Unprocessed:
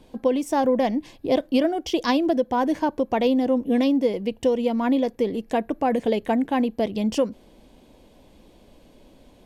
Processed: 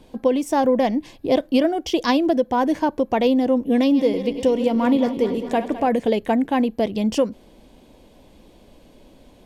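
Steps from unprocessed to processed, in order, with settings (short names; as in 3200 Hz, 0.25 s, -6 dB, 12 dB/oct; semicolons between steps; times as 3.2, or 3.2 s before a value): 3.81–5.88 regenerating reverse delay 0.105 s, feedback 79%, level -12 dB; gain +2.5 dB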